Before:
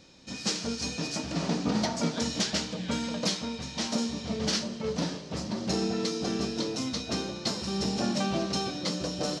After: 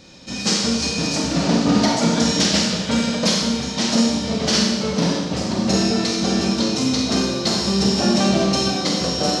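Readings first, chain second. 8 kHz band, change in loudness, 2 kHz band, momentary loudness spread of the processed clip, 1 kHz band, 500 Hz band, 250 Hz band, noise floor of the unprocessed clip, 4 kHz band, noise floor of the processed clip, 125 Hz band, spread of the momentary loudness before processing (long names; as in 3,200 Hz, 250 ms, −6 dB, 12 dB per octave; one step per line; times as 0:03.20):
+11.5 dB, +11.5 dB, +11.5 dB, 4 LU, +11.0 dB, +10.5 dB, +12.0 dB, −42 dBFS, +12.0 dB, −28 dBFS, +11.0 dB, 4 LU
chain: four-comb reverb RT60 1.1 s, combs from 31 ms, DRR −0.5 dB
level +8.5 dB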